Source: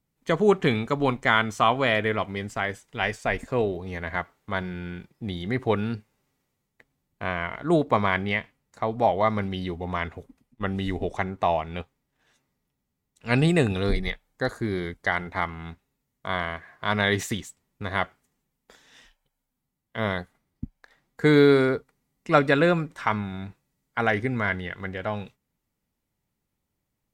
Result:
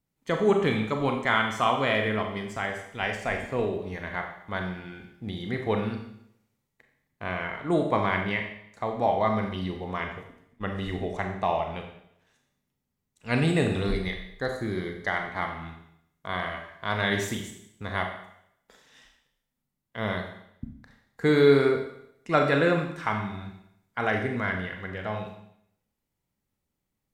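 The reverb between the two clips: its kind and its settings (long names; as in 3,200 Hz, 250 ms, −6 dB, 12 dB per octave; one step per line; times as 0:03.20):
four-comb reverb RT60 0.73 s, combs from 29 ms, DRR 3 dB
level −4 dB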